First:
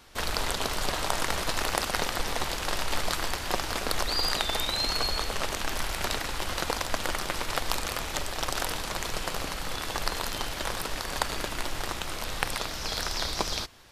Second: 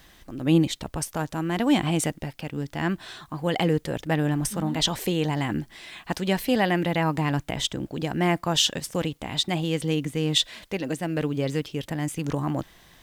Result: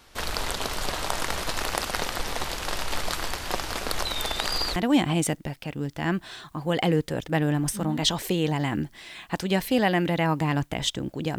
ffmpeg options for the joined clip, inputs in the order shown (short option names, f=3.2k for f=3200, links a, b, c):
-filter_complex "[0:a]apad=whole_dur=11.38,atrim=end=11.38,asplit=2[a][b];[a]atrim=end=4.052[c];[b]atrim=start=4.048:end=4.762,asetpts=PTS-STARTPTS,areverse[d];[1:a]atrim=start=1.528:end=8.15[e];[c][d]acrossfade=d=0.004:c1=hsin:c2=hsin[f];[f][e]acrossfade=d=0.004:c1=hsin:c2=hsin"